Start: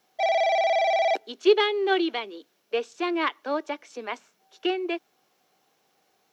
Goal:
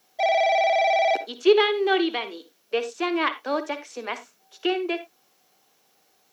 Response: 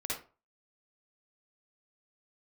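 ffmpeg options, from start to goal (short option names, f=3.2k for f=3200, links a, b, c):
-filter_complex "[0:a]acrossover=split=4000[a][b];[b]acompressor=threshold=-48dB:ratio=4:attack=1:release=60[c];[a][c]amix=inputs=2:normalize=0,highshelf=f=4.4k:g=8,asplit=2[d][e];[1:a]atrim=start_sample=2205,afade=t=out:st=0.16:d=0.01,atrim=end_sample=7497[f];[e][f]afir=irnorm=-1:irlink=0,volume=-12dB[g];[d][g]amix=inputs=2:normalize=0"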